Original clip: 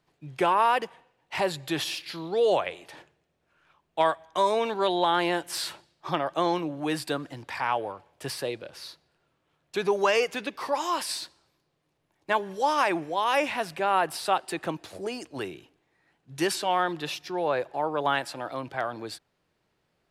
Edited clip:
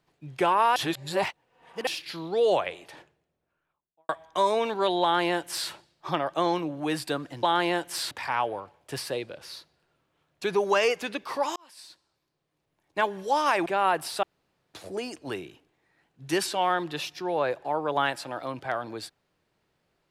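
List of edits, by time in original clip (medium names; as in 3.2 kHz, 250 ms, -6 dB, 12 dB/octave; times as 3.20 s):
0.76–1.87 s: reverse
2.80–4.09 s: studio fade out
5.02–5.70 s: copy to 7.43 s
10.88–12.37 s: fade in
12.98–13.75 s: delete
14.32–14.83 s: room tone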